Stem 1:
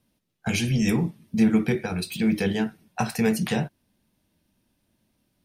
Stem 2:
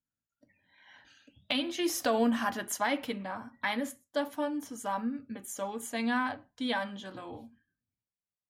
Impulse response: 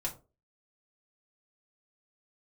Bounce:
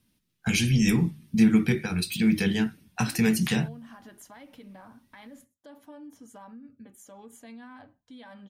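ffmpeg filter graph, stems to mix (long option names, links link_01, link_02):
-filter_complex "[0:a]equalizer=frequency=620:width=1:gain=-11.5,bandreject=frequency=50:width_type=h:width=6,bandreject=frequency=100:width_type=h:width=6,bandreject=frequency=150:width_type=h:width=6,volume=2.5dB[link_01];[1:a]lowshelf=frequency=400:gain=7.5,acompressor=threshold=-28dB:ratio=6,alimiter=level_in=4dB:limit=-24dB:level=0:latency=1:release=81,volume=-4dB,adelay=1500,volume=-11dB[link_02];[link_01][link_02]amix=inputs=2:normalize=0"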